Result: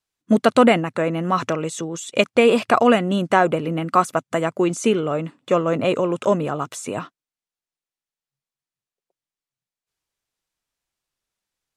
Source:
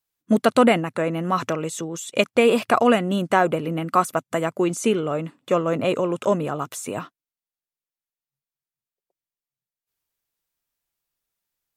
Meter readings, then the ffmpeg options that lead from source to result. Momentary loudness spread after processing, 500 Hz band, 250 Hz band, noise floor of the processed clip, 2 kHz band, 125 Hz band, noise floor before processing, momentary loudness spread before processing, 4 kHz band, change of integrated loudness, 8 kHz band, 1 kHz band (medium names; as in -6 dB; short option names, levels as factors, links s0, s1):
12 LU, +2.0 dB, +2.0 dB, under -85 dBFS, +2.0 dB, +2.0 dB, under -85 dBFS, 11 LU, +2.0 dB, +2.0 dB, 0.0 dB, +2.0 dB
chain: -af "lowpass=8800,volume=1.26"